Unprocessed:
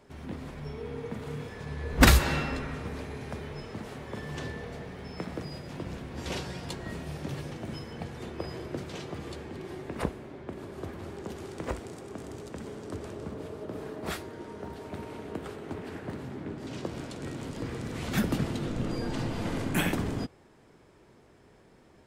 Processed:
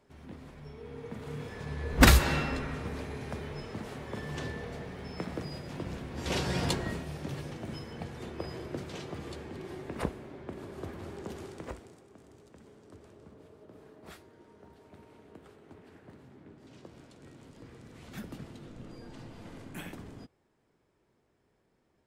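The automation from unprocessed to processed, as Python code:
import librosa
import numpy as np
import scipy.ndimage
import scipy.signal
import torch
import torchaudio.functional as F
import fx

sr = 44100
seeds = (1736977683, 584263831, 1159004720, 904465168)

y = fx.gain(x, sr, db=fx.line((0.76, -8.0), (1.55, -0.5), (6.19, -0.5), (6.63, 9.5), (7.08, -2.0), (11.4, -2.0), (12.08, -15.0)))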